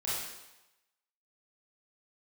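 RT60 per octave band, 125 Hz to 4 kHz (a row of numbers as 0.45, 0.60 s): 0.75, 0.85, 0.95, 1.0, 0.95, 0.95 s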